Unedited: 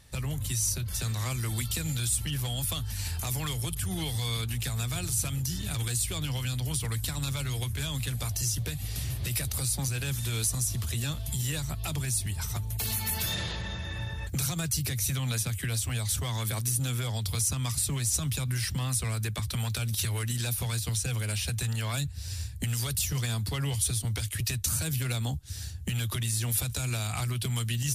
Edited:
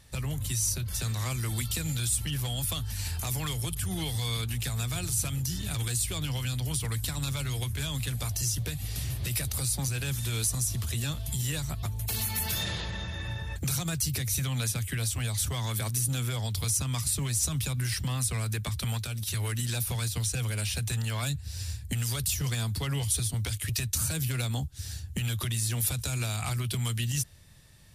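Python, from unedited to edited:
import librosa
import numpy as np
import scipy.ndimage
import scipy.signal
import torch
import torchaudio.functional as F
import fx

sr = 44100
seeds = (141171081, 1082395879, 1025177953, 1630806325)

y = fx.edit(x, sr, fx.cut(start_s=11.83, length_s=0.71),
    fx.clip_gain(start_s=19.7, length_s=0.35, db=-3.5), tone=tone)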